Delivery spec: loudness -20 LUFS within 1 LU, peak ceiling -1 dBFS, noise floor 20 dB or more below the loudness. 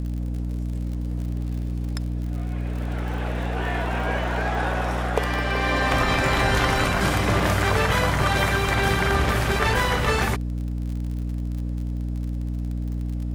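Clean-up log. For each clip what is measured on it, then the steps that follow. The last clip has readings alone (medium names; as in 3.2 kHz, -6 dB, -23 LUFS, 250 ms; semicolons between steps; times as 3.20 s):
tick rate 52 per s; hum 60 Hz; highest harmonic 300 Hz; hum level -25 dBFS; loudness -24.0 LUFS; peak level -5.5 dBFS; loudness target -20.0 LUFS
-> de-click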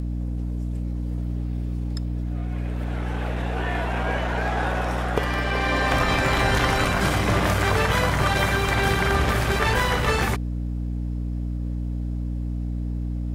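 tick rate 0.30 per s; hum 60 Hz; highest harmonic 300 Hz; hum level -25 dBFS
-> hum notches 60/120/180/240/300 Hz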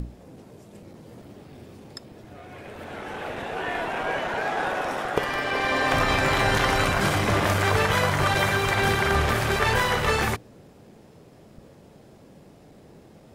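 hum not found; loudness -23.5 LUFS; peak level -5.5 dBFS; loudness target -20.0 LUFS
-> trim +3.5 dB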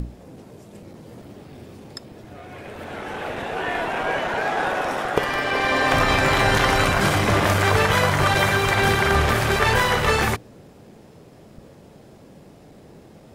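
loudness -20.0 LUFS; peak level -2.0 dBFS; noise floor -47 dBFS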